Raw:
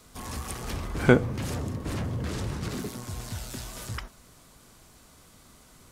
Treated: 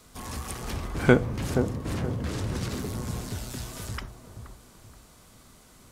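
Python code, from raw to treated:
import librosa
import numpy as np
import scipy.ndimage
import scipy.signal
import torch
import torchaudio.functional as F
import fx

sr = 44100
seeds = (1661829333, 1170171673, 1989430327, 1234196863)

y = fx.echo_wet_lowpass(x, sr, ms=476, feedback_pct=35, hz=950.0, wet_db=-7.0)
y = fx.band_squash(y, sr, depth_pct=100, at=(2.55, 3.2))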